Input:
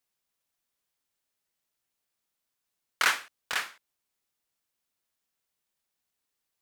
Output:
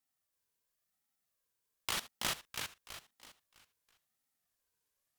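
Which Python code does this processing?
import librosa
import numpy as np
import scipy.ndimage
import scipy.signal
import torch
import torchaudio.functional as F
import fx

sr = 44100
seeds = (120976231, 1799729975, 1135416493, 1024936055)

p1 = fx.speed_glide(x, sr, from_pct=178, to_pct=77)
p2 = fx.high_shelf(p1, sr, hz=5300.0, db=7.5)
p3 = fx.level_steps(p2, sr, step_db=17)
p4 = fx.small_body(p3, sr, hz=(260.0, 820.0), ring_ms=30, db=13)
p5 = p4 + fx.echo_feedback(p4, sr, ms=328, feedback_pct=39, wet_db=-5, dry=0)
p6 = fx.ring_lfo(p5, sr, carrier_hz=890.0, swing_pct=20, hz=0.94)
y = p6 * 10.0 ** (1.5 / 20.0)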